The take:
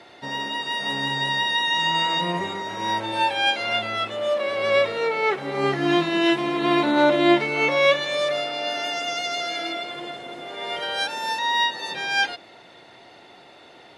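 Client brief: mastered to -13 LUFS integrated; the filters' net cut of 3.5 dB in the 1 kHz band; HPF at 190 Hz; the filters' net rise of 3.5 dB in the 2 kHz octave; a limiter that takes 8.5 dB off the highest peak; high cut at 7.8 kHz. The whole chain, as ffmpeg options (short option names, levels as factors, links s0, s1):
-af "highpass=190,lowpass=7800,equalizer=f=1000:t=o:g=-5.5,equalizer=f=2000:t=o:g=5.5,volume=3.55,alimiter=limit=0.596:level=0:latency=1"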